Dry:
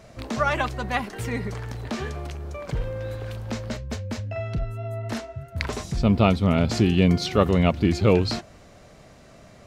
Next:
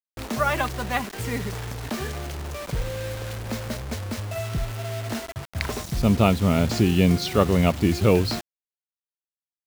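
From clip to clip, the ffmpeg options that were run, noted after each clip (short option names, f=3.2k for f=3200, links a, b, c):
-af "acrusher=bits=5:mix=0:aa=0.000001"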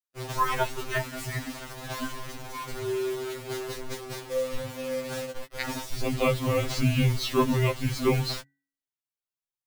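-af "bandreject=f=417.3:t=h:w=4,bandreject=f=834.6:t=h:w=4,bandreject=f=1.2519k:t=h:w=4,bandreject=f=1.6692k:t=h:w=4,bandreject=f=2.0865k:t=h:w=4,afreqshift=-140,afftfilt=real='re*2.45*eq(mod(b,6),0)':imag='im*2.45*eq(mod(b,6),0)':win_size=2048:overlap=0.75"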